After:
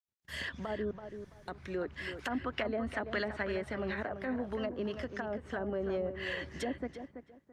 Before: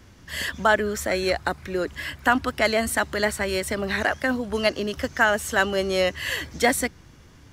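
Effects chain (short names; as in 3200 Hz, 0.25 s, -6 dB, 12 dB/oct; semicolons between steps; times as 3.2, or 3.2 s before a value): gate -44 dBFS, range -51 dB; HPF 52 Hz 24 dB/oct; 0.91–1.48 room tone; 3.95–4.6 bell 13000 Hz +11.5 dB 0.96 oct; treble ducked by the level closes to 470 Hz, closed at -17 dBFS; limiter -19 dBFS, peak gain reduction 11.5 dB; 2.19–3.43 bell 3800 Hz +10 dB 2.8 oct; tape echo 0.334 s, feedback 26%, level -8 dB, low-pass 2400 Hz; gain -8 dB; Opus 48 kbps 48000 Hz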